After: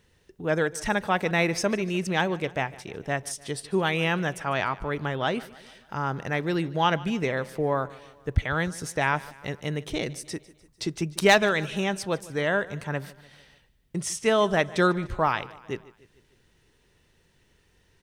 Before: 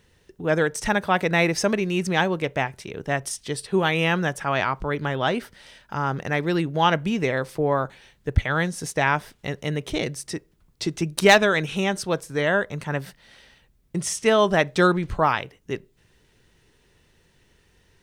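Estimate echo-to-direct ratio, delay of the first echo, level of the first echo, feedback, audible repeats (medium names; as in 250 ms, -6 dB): -18.5 dB, 149 ms, -20.0 dB, 53%, 3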